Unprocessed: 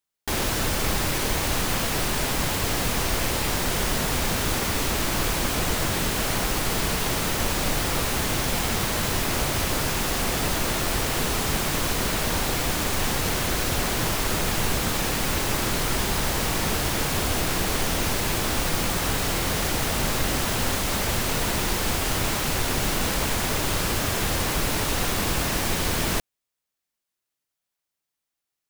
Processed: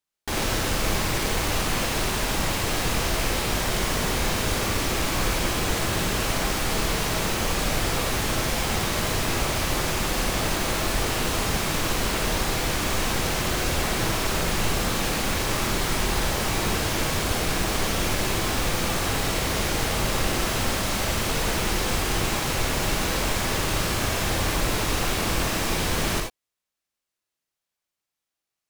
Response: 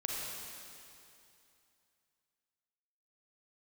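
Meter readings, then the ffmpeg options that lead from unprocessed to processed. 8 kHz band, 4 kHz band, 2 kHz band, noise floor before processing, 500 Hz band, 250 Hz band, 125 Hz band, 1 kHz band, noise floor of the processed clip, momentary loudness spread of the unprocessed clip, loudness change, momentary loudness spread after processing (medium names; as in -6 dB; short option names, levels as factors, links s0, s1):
-1.0 dB, 0.0 dB, +0.5 dB, -84 dBFS, +1.0 dB, 0.0 dB, 0.0 dB, +0.5 dB, under -85 dBFS, 0 LU, -0.5 dB, 0 LU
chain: -filter_complex "[0:a]highshelf=f=11000:g=-6.5[s0];[1:a]atrim=start_sample=2205,atrim=end_sample=4410[s1];[s0][s1]afir=irnorm=-1:irlink=0"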